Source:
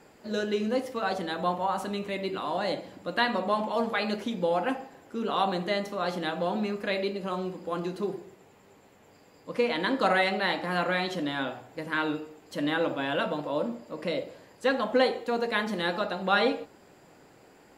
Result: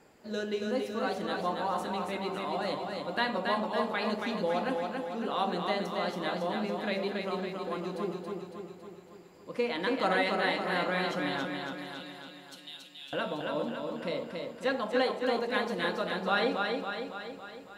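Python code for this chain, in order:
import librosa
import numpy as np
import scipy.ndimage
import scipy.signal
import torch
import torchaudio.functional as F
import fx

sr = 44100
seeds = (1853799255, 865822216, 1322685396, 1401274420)

y = fx.cheby2_highpass(x, sr, hz=950.0, order=4, stop_db=60, at=(11.45, 13.13))
y = fx.echo_feedback(y, sr, ms=278, feedback_pct=58, wet_db=-4.0)
y = y * librosa.db_to_amplitude(-4.5)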